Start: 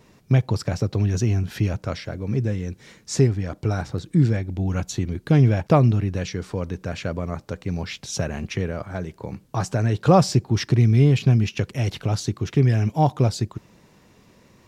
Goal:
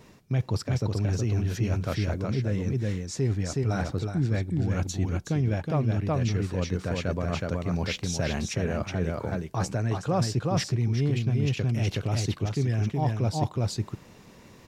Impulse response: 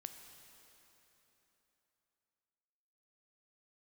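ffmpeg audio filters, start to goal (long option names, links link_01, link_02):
-af "aecho=1:1:370:0.668,areverse,acompressor=threshold=-25dB:ratio=5,areverse,volume=1.5dB"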